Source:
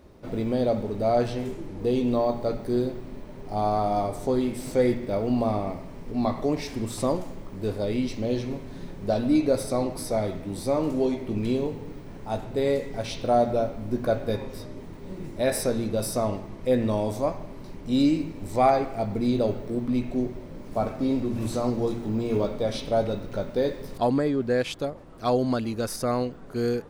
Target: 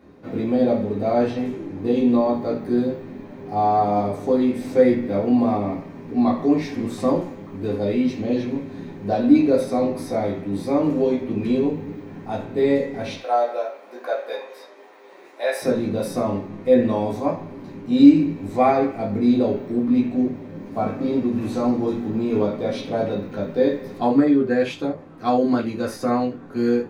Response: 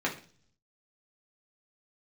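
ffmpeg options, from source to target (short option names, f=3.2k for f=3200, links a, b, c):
-filter_complex "[0:a]asettb=1/sr,asplit=3[a][b][c];[a]atrim=end=13.164[d];[b]atrim=start=13.16:end=15.62,asetpts=PTS-STARTPTS,afade=t=in:d=0.004:c=qsin,afade=t=out:st=2.456:d=0.004:c=qsin,highpass=f=530:w=0.5412,highpass=f=530:w=1.3066[e];[c]atrim=start=15.616[f];[d][e]acrossfade=d=0.004:c1=hsin:c2=qsin[g];[g][f]acrossfade=d=0.004:c1=qsin:c2=hsin[h];[1:a]atrim=start_sample=2205,afade=t=out:st=0.14:d=0.01,atrim=end_sample=6615[i];[h][i]afir=irnorm=-1:irlink=0,volume=-4.5dB"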